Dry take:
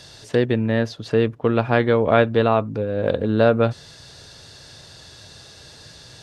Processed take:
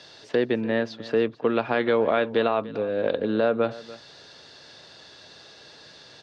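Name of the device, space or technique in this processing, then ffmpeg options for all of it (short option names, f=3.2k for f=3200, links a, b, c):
DJ mixer with the lows and highs turned down: -filter_complex "[0:a]acrossover=split=200 5500:gain=0.126 1 0.0794[a][b][c];[a][b][c]amix=inputs=3:normalize=0,alimiter=limit=-10.5dB:level=0:latency=1:release=96,asettb=1/sr,asplit=3[d][e][f];[d]atrim=end=1.504[g];[e]atrim=start=1.5:end=3.37,asetpts=PTS-STARTPTS,afade=t=in:d=0.004:c=qsin,afade=t=out:st=1.866:d=0.004:c=qsin,equalizer=f=4.9k:w=0.46:g=4[h];[f]atrim=start=3.366[i];[g][h]acrossfade=d=0.004:c1=hsin:c2=qsin[j];[j][i]acrossfade=d=0.004:c1=qsin:c2=hsin,aecho=1:1:292:0.119,volume=-1.5dB"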